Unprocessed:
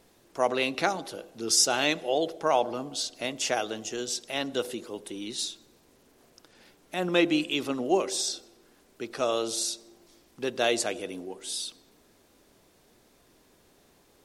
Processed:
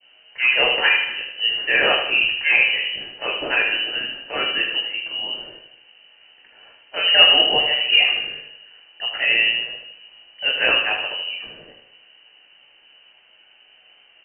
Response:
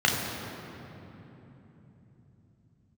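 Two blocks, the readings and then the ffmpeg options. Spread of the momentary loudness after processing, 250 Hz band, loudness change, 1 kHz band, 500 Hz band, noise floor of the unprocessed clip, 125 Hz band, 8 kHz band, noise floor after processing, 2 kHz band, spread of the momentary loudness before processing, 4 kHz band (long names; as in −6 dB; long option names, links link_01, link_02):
14 LU, −8.0 dB, +11.0 dB, +2.5 dB, 0.0 dB, −62 dBFS, can't be measured, below −40 dB, −54 dBFS, +17.0 dB, 14 LU, +15.5 dB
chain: -filter_complex "[0:a]adynamicequalizer=threshold=0.00794:dfrequency=1500:dqfactor=1.1:tfrequency=1500:tqfactor=1.1:attack=5:release=100:ratio=0.375:range=2.5:mode=boostabove:tftype=bell,asplit=2[link_01][link_02];[link_02]asoftclip=type=tanh:threshold=-20dB,volume=-4dB[link_03];[link_01][link_03]amix=inputs=2:normalize=0,aecho=1:1:77|154|231|308|385|462:0.473|0.237|0.118|0.0591|0.0296|0.0148[link_04];[1:a]atrim=start_sample=2205,atrim=end_sample=3969,asetrate=79380,aresample=44100[link_05];[link_04][link_05]afir=irnorm=-1:irlink=0,lowpass=frequency=2700:width_type=q:width=0.5098,lowpass=frequency=2700:width_type=q:width=0.6013,lowpass=frequency=2700:width_type=q:width=0.9,lowpass=frequency=2700:width_type=q:width=2.563,afreqshift=-3200,volume=-4.5dB"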